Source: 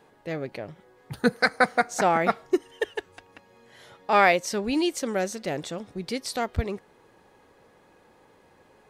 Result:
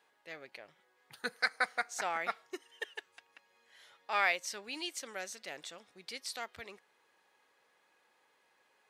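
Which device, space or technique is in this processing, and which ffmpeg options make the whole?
filter by subtraction: -filter_complex "[0:a]asplit=2[a][b];[b]lowpass=2.3k,volume=-1[c];[a][c]amix=inputs=2:normalize=0,volume=-8.5dB"

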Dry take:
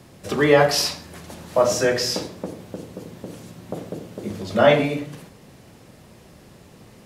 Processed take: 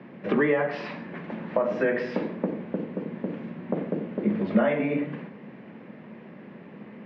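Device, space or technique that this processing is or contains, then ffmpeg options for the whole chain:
bass amplifier: -af "acompressor=threshold=-24dB:ratio=6,highpass=f=140:w=0.5412,highpass=f=140:w=1.3066,highpass=78,equalizer=f=120:t=q:w=4:g=-7,equalizer=f=220:t=q:w=4:g=7,equalizer=f=740:t=q:w=4:g=-4,equalizer=f=1.3k:t=q:w=4:g=-4,lowpass=f=2.3k:w=0.5412,lowpass=f=2.3k:w=1.3066,equalizer=f=2k:w=1.5:g=2.5,volume=3.5dB"

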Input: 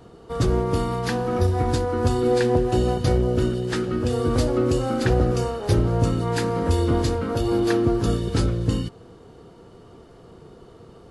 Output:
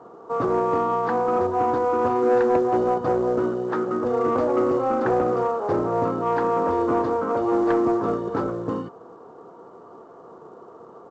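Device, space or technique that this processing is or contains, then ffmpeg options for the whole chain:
telephone: -af "highpass=290,lowpass=3.6k,firequalizer=gain_entry='entry(290,0);entry(1100,8);entry(1700,-6);entry(2500,-18)':delay=0.05:min_phase=1,asoftclip=type=tanh:threshold=-14.5dB,volume=2.5dB" -ar 16000 -c:a pcm_mulaw

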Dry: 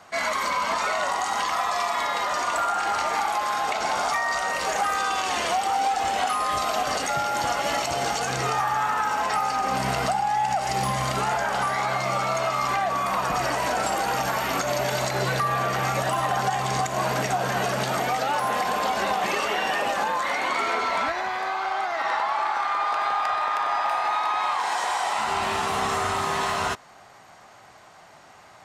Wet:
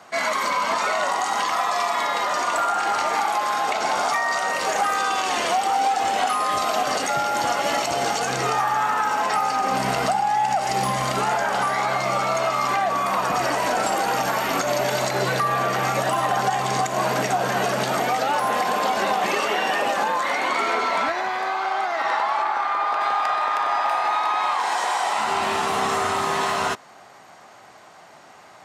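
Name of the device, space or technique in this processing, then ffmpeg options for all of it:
filter by subtraction: -filter_complex "[0:a]asplit=2[a][b];[b]lowpass=270,volume=-1[c];[a][c]amix=inputs=2:normalize=0,asettb=1/sr,asplit=3[d][e][f];[d]atrim=end=22.424[g];[e]atrim=start=22.42:end=23.01,asetpts=PTS-STARTPTS,afade=t=in:d=0.004:c=qsin,afade=t=out:st=0.586:d=0.004:c=qsin,highshelf=f=3.8k:g=-6.5[h];[f]atrim=start=23.006[i];[g][h]acrossfade=d=0.004:c1=hsin:c2=qsin[j];[j][i]acrossfade=d=0.004:c1=qsin:c2=hsin,volume=2dB"

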